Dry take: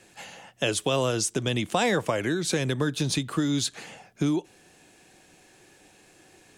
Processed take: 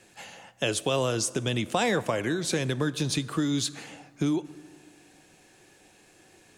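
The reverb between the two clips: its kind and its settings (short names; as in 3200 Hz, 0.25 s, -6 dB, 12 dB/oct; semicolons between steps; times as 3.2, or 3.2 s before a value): plate-style reverb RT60 2.2 s, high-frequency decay 0.5×, DRR 17 dB; gain -1.5 dB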